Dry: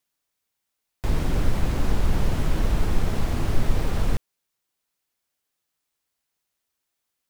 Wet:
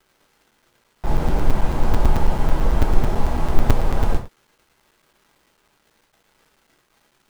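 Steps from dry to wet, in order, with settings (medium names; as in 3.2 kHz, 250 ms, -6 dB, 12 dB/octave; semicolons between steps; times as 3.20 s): peaking EQ 800 Hz +9.5 dB 1 oct; crackle 390 per s -41 dBFS; gated-style reverb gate 130 ms falling, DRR 0 dB; crackling interface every 0.11 s, samples 256, zero, from 0.51 s; tape noise reduction on one side only decoder only; trim -1.5 dB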